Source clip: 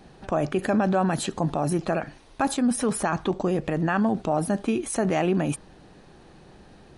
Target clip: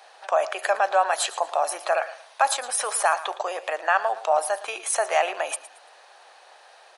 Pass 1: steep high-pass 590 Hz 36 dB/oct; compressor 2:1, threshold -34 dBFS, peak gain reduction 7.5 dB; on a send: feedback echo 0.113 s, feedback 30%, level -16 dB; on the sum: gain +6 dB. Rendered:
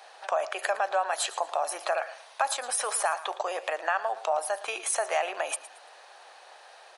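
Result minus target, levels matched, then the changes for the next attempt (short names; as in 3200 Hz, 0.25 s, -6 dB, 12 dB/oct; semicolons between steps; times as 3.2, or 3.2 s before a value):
compressor: peak gain reduction +7.5 dB
remove: compressor 2:1, threshold -34 dBFS, peak gain reduction 7.5 dB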